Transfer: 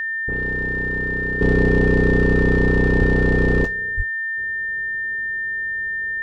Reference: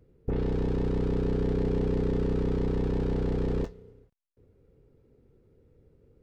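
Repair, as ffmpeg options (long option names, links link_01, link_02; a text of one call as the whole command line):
ffmpeg -i in.wav -filter_complex "[0:a]bandreject=frequency=1800:width=30,asplit=3[link_01][link_02][link_03];[link_01]afade=type=out:start_time=2.98:duration=0.02[link_04];[link_02]highpass=frequency=140:width=0.5412,highpass=frequency=140:width=1.3066,afade=type=in:start_time=2.98:duration=0.02,afade=type=out:start_time=3.1:duration=0.02[link_05];[link_03]afade=type=in:start_time=3.1:duration=0.02[link_06];[link_04][link_05][link_06]amix=inputs=3:normalize=0,asplit=3[link_07][link_08][link_09];[link_07]afade=type=out:start_time=3.96:duration=0.02[link_10];[link_08]highpass=frequency=140:width=0.5412,highpass=frequency=140:width=1.3066,afade=type=in:start_time=3.96:duration=0.02,afade=type=out:start_time=4.08:duration=0.02[link_11];[link_09]afade=type=in:start_time=4.08:duration=0.02[link_12];[link_10][link_11][link_12]amix=inputs=3:normalize=0,asetnsamples=nb_out_samples=441:pad=0,asendcmd='1.41 volume volume -10.5dB',volume=0dB" out.wav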